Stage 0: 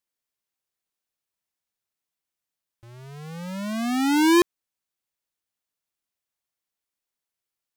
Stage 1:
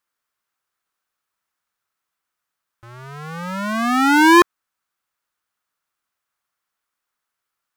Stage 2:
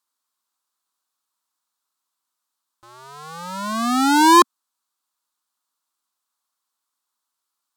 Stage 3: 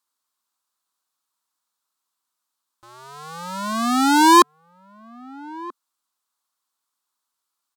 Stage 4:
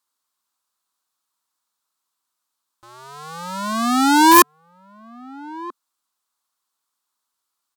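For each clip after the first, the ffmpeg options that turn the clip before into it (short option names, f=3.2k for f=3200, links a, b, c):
-af "equalizer=f=1.3k:t=o:w=1.1:g=13,volume=3.5dB"
-af "equalizer=f=125:t=o:w=1:g=-11,equalizer=f=250:t=o:w=1:g=11,equalizer=f=1k:t=o:w=1:g=12,equalizer=f=2k:t=o:w=1:g=-5,equalizer=f=4k:t=o:w=1:g=11,equalizer=f=8k:t=o:w=1:g=9,equalizer=f=16k:t=o:w=1:g=11,volume=-10dB"
-filter_complex "[0:a]asplit=2[a][b];[b]adelay=1283,volume=-20dB,highshelf=f=4k:g=-28.9[c];[a][c]amix=inputs=2:normalize=0"
-af "aeval=exprs='(mod(1.41*val(0)+1,2)-1)/1.41':c=same,volume=1.5dB"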